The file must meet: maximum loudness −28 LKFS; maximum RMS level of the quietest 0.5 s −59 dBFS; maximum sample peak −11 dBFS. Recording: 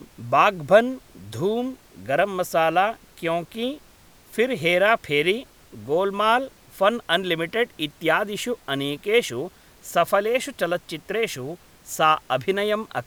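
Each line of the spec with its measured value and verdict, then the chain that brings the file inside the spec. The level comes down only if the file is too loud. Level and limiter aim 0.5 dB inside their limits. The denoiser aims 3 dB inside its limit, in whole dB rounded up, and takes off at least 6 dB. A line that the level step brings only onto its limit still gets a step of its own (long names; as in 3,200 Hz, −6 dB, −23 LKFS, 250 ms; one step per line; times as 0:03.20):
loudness −23.0 LKFS: out of spec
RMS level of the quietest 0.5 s −52 dBFS: out of spec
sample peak −4.0 dBFS: out of spec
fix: broadband denoise 6 dB, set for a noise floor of −52 dBFS
level −5.5 dB
brickwall limiter −11.5 dBFS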